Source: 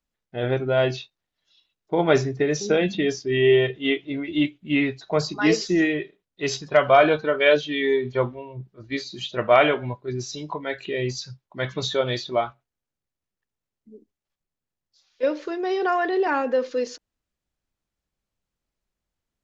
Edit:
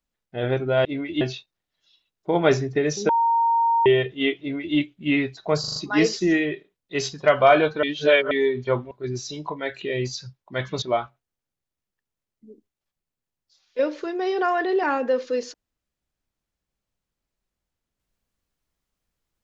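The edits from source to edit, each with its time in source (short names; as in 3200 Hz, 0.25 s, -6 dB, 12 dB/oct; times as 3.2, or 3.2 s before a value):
2.73–3.5 bleep 925 Hz -16.5 dBFS
4.04–4.4 copy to 0.85
5.24 stutter 0.04 s, 5 plays
7.31–7.79 reverse
8.39–9.95 cut
11.86–12.26 cut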